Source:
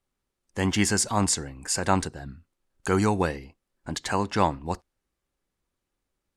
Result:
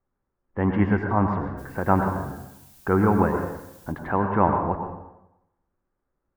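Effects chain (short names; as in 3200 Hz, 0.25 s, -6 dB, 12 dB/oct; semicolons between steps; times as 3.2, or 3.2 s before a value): LPF 1600 Hz 24 dB/oct; 1.57–3.91 added noise blue -57 dBFS; plate-style reverb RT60 0.89 s, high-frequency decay 0.75×, pre-delay 85 ms, DRR 4 dB; gain +2.5 dB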